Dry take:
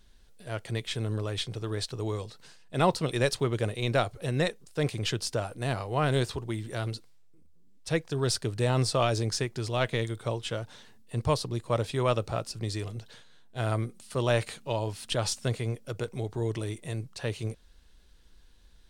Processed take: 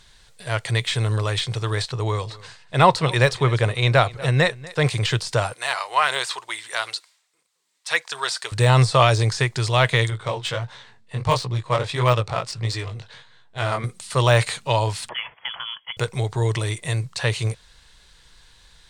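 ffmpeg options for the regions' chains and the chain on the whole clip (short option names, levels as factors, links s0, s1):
-filter_complex "[0:a]asettb=1/sr,asplit=3[s0][s1][s2];[s0]atrim=end=1.884[s3];[s1]atrim=start=1.88:end=4.84,asetpts=PTS-STARTPTS,afade=t=in:d=0.004:c=qsin,afade=t=out:st=2.956:d=0.004:c=qsin,highshelf=f=4700:g=-9,aecho=1:1:241:0.0891,atrim=end_sample=130536[s4];[s2]atrim=start=4.836[s5];[s3][s4]acrossfade=d=0.004:c1=hsin:c2=qsin[s6];[s6][s5]acrossfade=d=0.004:c1=qsin:c2=hsin,asettb=1/sr,asplit=3[s7][s8][s9];[s7]atrim=end=5.534[s10];[s8]atrim=start=5.53:end=8.52,asetpts=PTS-STARTPTS,afade=t=in:d=0.004:c=qsin,afade=t=out:st=2.986:d=0.004:c=qsin,highpass=880,aphaser=in_gain=1:out_gain=1:delay=3.3:decay=0.26:speed=1.6:type=sinusoidal[s11];[s9]atrim=start=8.516[s12];[s10][s11]acrossfade=d=0.004:c1=hsin:c2=qsin[s13];[s13][s12]acrossfade=d=0.004:c1=qsin:c2=hsin,asettb=1/sr,asplit=3[s14][s15][s16];[s14]atrim=end=10.104[s17];[s15]atrim=start=10.1:end=13.84,asetpts=PTS-STARTPTS,afade=t=in:d=0.004:c=qsin,afade=t=out:st=3.736:d=0.004:c=qsin,aemphasis=mode=production:type=50fm,flanger=delay=16:depth=6.8:speed=1.5,adynamicsmooth=sensitivity=4.5:basefreq=2700[s18];[s16]atrim=start=13.836[s19];[s17][s18]acrossfade=d=0.004:c1=hsin:c2=qsin[s20];[s20][s19]acrossfade=d=0.004:c1=qsin:c2=hsin,asettb=1/sr,asplit=3[s21][s22][s23];[s21]atrim=end=15.094[s24];[s22]atrim=start=15.09:end=15.97,asetpts=PTS-STARTPTS,afade=t=in:d=0.004:c=qsin,afade=t=out:st=0.876:d=0.004:c=qsin,highpass=f=950:p=1,acompressor=threshold=0.01:ratio=2.5:attack=3.2:release=140:knee=1:detection=peak,lowpass=f=3000:t=q:w=0.5098,lowpass=f=3000:t=q:w=0.6013,lowpass=f=3000:t=q:w=0.9,lowpass=f=3000:t=q:w=2.563,afreqshift=-3500[s25];[s23]atrim=start=15.966[s26];[s24][s25]acrossfade=d=0.004:c1=hsin:c2=qsin[s27];[s27][s26]acrossfade=d=0.004:c1=qsin:c2=hsin,deesser=0.95,equalizer=f=125:t=o:w=1:g=11,equalizer=f=250:t=o:w=1:g=-5,equalizer=f=500:t=o:w=1:g=4,equalizer=f=1000:t=o:w=1:g=10,equalizer=f=2000:t=o:w=1:g=10,equalizer=f=4000:t=o:w=1:g=9,equalizer=f=8000:t=o:w=1:g=12,volume=1.19"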